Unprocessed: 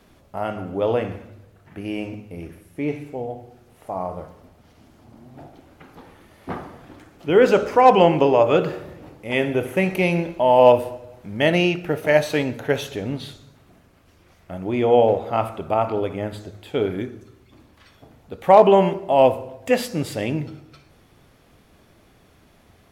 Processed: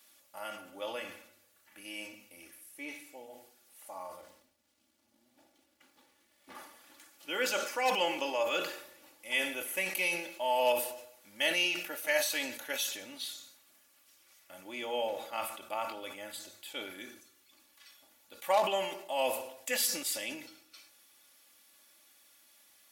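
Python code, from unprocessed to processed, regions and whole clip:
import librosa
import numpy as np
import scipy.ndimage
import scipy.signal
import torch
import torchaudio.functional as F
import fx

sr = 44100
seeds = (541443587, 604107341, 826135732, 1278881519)

y = fx.chain(x, sr, fx.lowpass(hz=3900.0, slope=6),
    fx.peak_eq(hz=1100.0, db=-8.0, octaves=2.2),
    fx.backlash(play_db=-56.5), at=(4.21, 6.55))
y = np.diff(y, prepend=0.0)
y = y + 0.74 * np.pad(y, (int(3.5 * sr / 1000.0), 0))[:len(y)]
y = fx.sustainer(y, sr, db_per_s=77.0)
y = y * librosa.db_to_amplitude(1.5)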